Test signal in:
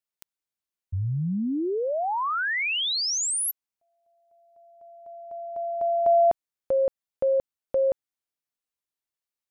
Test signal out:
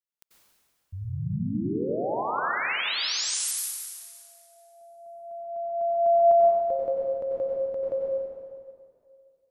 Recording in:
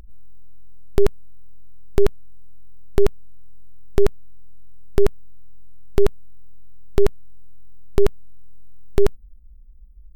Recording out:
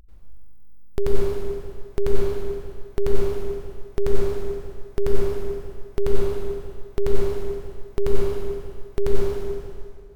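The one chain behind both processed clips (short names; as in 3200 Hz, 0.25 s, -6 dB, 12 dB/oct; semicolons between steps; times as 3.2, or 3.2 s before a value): plate-style reverb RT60 2.2 s, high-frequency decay 0.85×, pre-delay 80 ms, DRR -6 dB; gain -8.5 dB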